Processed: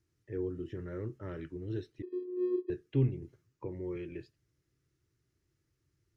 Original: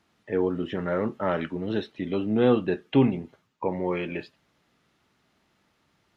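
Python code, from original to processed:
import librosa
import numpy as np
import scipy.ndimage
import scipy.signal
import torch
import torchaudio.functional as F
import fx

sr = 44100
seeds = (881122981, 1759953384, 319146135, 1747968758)

y = fx.curve_eq(x, sr, hz=(130.0, 210.0, 340.0, 750.0, 1700.0, 3500.0, 5600.0), db=(0, -22, -6, -28, -17, -21, -9))
y = fx.vocoder(y, sr, bands=8, carrier='square', carrier_hz=362.0, at=(2.02, 2.7))
y = fx.band_squash(y, sr, depth_pct=40, at=(3.22, 3.96))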